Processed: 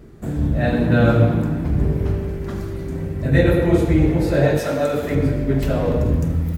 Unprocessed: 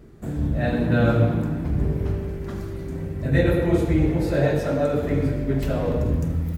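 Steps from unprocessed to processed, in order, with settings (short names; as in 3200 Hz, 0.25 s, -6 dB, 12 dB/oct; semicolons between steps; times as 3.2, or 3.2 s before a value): 4.57–5.15 tilt +2 dB/oct; gain +4 dB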